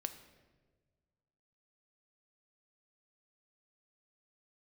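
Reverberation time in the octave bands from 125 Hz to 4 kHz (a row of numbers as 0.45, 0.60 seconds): 2.1, 1.8, 1.7, 1.2, 1.1, 0.90 seconds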